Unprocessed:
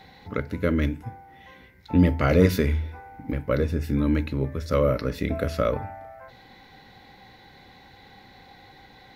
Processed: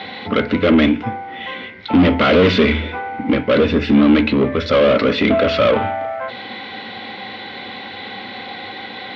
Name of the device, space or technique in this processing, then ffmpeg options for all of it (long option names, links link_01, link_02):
overdrive pedal into a guitar cabinet: -filter_complex "[0:a]asplit=2[link_01][link_02];[link_02]highpass=frequency=720:poles=1,volume=31dB,asoftclip=type=tanh:threshold=-4.5dB[link_03];[link_01][link_03]amix=inputs=2:normalize=0,lowpass=frequency=3600:poles=1,volume=-6dB,highpass=89,equalizer=frequency=96:width_type=q:width=4:gain=5,equalizer=frequency=150:width_type=q:width=4:gain=-8,equalizer=frequency=220:width_type=q:width=4:gain=8,equalizer=frequency=870:width_type=q:width=4:gain=-7,equalizer=frequency=1700:width_type=q:width=4:gain=-6,equalizer=frequency=3200:width_type=q:width=4:gain=5,lowpass=frequency=3900:width=0.5412,lowpass=frequency=3900:width=1.3066"